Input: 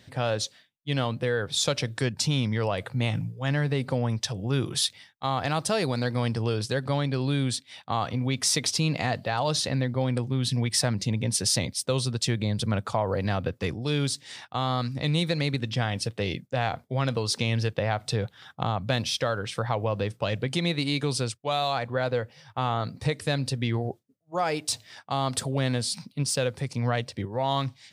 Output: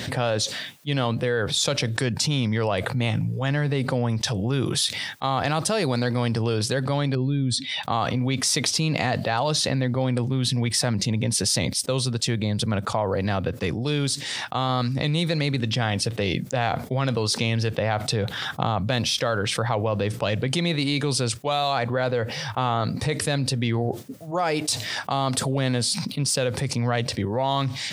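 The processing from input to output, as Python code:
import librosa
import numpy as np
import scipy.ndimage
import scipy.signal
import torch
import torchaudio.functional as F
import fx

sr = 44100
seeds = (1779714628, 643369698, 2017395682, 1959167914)

y = fx.spec_expand(x, sr, power=1.6, at=(7.15, 7.83))
y = fx.upward_expand(y, sr, threshold_db=-37.0, expansion=1.5, at=(11.81, 14.69))
y = fx.highpass(y, sr, hz=150.0, slope=6)
y = fx.low_shelf(y, sr, hz=210.0, db=4.0)
y = fx.env_flatten(y, sr, amount_pct=70)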